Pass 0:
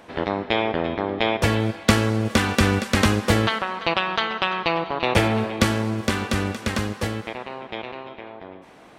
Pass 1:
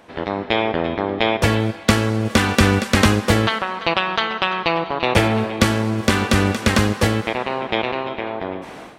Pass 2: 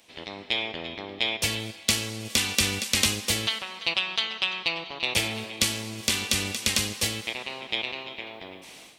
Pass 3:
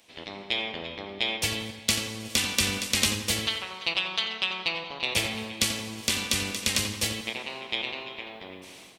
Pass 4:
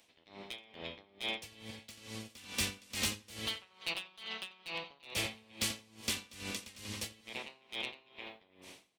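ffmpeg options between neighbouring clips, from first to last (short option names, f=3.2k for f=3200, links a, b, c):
-af "dynaudnorm=f=220:g=3:m=14dB,volume=-1dB"
-af "aexciter=amount=7.5:drive=3.4:freq=2.2k,volume=-16.5dB"
-filter_complex "[0:a]asplit=2[a][b];[b]adelay=86,lowpass=f=2.5k:p=1,volume=-7.5dB,asplit=2[c][d];[d]adelay=86,lowpass=f=2.5k:p=1,volume=0.53,asplit=2[e][f];[f]adelay=86,lowpass=f=2.5k:p=1,volume=0.53,asplit=2[g][h];[h]adelay=86,lowpass=f=2.5k:p=1,volume=0.53,asplit=2[i][j];[j]adelay=86,lowpass=f=2.5k:p=1,volume=0.53,asplit=2[k][l];[l]adelay=86,lowpass=f=2.5k:p=1,volume=0.53[m];[a][c][e][g][i][k][m]amix=inputs=7:normalize=0,volume=-1.5dB"
-af "volume=22dB,asoftclip=hard,volume=-22dB,aeval=exprs='val(0)*pow(10,-22*(0.5-0.5*cos(2*PI*2.3*n/s))/20)':c=same,volume=-5.5dB"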